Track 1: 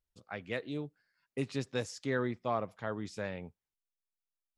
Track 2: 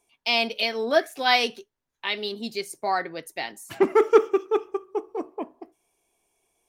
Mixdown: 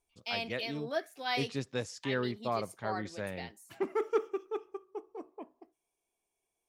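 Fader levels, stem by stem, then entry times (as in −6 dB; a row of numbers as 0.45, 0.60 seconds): −0.5, −13.5 decibels; 0.00, 0.00 seconds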